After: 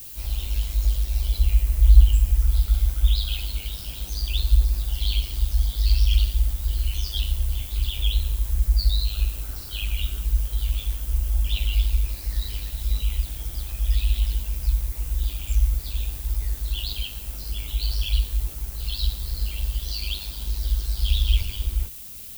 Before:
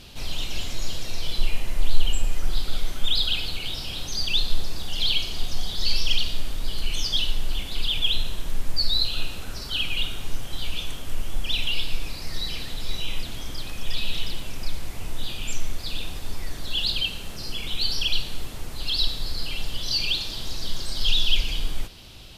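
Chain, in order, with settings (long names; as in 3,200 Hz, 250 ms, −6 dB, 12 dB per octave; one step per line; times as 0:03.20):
multi-voice chorus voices 6, 0.18 Hz, delay 17 ms, depth 4 ms
ring modulation 51 Hz
background noise violet −38 dBFS
level −1.5 dB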